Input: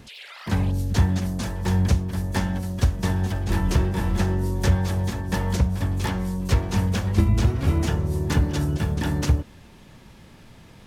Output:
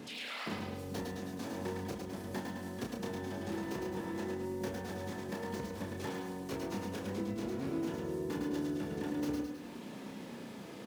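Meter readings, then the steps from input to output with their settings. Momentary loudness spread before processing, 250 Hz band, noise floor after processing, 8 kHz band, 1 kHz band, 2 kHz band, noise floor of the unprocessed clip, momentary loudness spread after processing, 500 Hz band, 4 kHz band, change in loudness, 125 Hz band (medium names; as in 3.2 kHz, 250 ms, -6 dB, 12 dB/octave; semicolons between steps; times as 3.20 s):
5 LU, -10.5 dB, -47 dBFS, -14.5 dB, -11.0 dB, -11.5 dB, -48 dBFS, 6 LU, -7.0 dB, -11.5 dB, -15.5 dB, -23.5 dB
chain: tracing distortion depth 0.093 ms; high-pass 200 Hz 12 dB/octave; peaking EQ 330 Hz +8.5 dB 2.3 oct; compression 6:1, threshold -36 dBFS, peak gain reduction 21 dB; doubling 30 ms -4.5 dB; feedback delay 105 ms, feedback 56%, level -8 dB; bit-crushed delay 109 ms, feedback 35%, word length 10-bit, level -5 dB; trim -3.5 dB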